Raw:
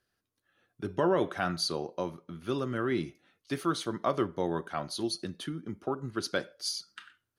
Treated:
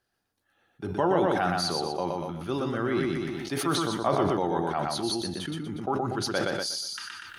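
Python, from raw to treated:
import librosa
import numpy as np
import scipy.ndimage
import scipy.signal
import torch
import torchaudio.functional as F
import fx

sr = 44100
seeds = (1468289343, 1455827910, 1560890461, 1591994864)

p1 = fx.peak_eq(x, sr, hz=820.0, db=9.5, octaves=0.37)
p2 = p1 + fx.echo_feedback(p1, sr, ms=121, feedback_pct=33, wet_db=-3.5, dry=0)
y = fx.sustainer(p2, sr, db_per_s=22.0)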